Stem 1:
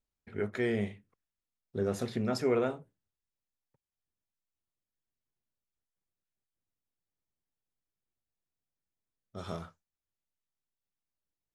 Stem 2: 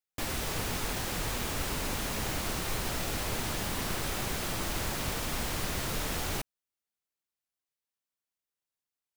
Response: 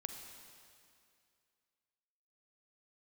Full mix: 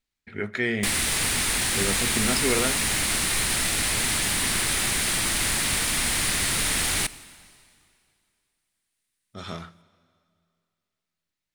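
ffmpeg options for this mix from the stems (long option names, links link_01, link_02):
-filter_complex "[0:a]volume=0.5dB,asplit=2[link_01][link_02];[link_02]volume=-10.5dB[link_03];[1:a]equalizer=frequency=9400:width=1.9:gain=13.5,adelay=650,volume=0dB,asplit=2[link_04][link_05];[link_05]volume=-7.5dB[link_06];[2:a]atrim=start_sample=2205[link_07];[link_03][link_06]amix=inputs=2:normalize=0[link_08];[link_08][link_07]afir=irnorm=-1:irlink=0[link_09];[link_01][link_04][link_09]amix=inputs=3:normalize=0,equalizer=frequency=250:width_type=o:width=1:gain=3,equalizer=frequency=500:width_type=o:width=1:gain=-3,equalizer=frequency=2000:width_type=o:width=1:gain=9,equalizer=frequency=4000:width_type=o:width=1:gain=7,equalizer=frequency=8000:width_type=o:width=1:gain=3"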